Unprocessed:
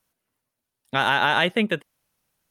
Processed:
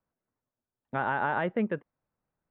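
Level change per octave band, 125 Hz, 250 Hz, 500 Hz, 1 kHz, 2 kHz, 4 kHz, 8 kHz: −5.0 dB, −5.0 dB, −5.5 dB, −7.0 dB, −11.0 dB, −26.5 dB, below −30 dB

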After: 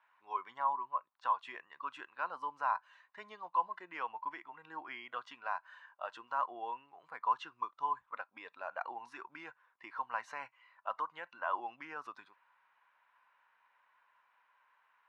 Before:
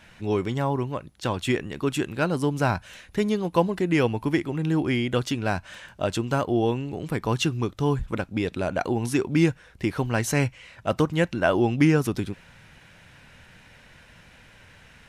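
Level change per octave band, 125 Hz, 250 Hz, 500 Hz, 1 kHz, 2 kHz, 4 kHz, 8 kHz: below −40 dB, −35.5 dB, −24.0 dB, −4.0 dB, −13.5 dB, −21.0 dB, below −30 dB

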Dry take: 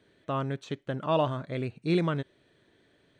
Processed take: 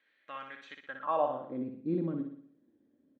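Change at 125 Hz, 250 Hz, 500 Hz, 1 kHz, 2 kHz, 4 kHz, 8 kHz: −12.0 dB, −4.0 dB, −5.0 dB, −2.0 dB, −5.5 dB, below −10 dB, can't be measured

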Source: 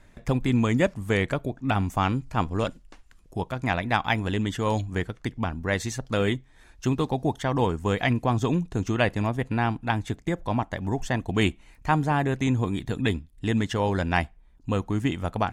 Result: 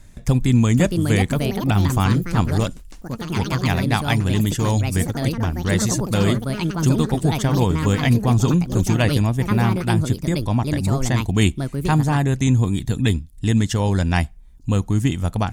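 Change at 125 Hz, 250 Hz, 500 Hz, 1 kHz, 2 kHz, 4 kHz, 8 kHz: +10.0, +7.0, +2.5, +1.5, +2.0, +6.5, +13.0 decibels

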